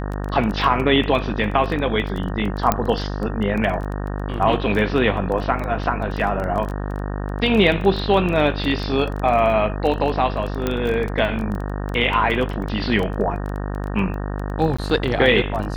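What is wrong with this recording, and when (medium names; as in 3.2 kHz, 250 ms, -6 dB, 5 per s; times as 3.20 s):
buzz 50 Hz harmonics 37 -26 dBFS
crackle 14 per s -24 dBFS
2.72 s: pop -3 dBFS
10.67 s: pop -8 dBFS
14.77–14.79 s: dropout 15 ms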